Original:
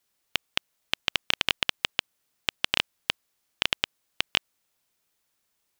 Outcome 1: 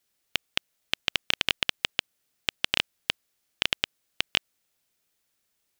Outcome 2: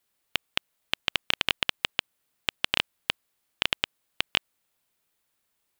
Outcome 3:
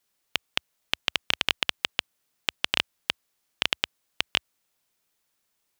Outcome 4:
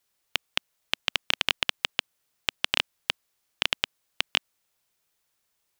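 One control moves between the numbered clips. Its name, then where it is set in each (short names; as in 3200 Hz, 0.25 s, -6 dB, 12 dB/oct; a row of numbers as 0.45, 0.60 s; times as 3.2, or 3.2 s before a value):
bell, frequency: 1000, 5800, 71, 250 Hz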